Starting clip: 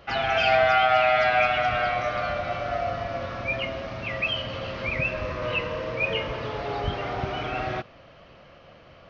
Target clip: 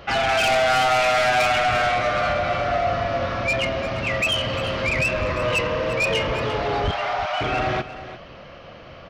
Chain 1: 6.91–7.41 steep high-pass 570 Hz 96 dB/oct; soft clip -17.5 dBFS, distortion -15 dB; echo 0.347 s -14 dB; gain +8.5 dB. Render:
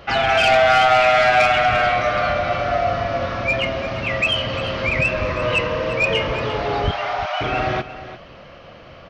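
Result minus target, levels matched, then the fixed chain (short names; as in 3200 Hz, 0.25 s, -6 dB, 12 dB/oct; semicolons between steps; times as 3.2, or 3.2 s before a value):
soft clip: distortion -7 dB
6.91–7.41 steep high-pass 570 Hz 96 dB/oct; soft clip -25 dBFS, distortion -8 dB; echo 0.347 s -14 dB; gain +8.5 dB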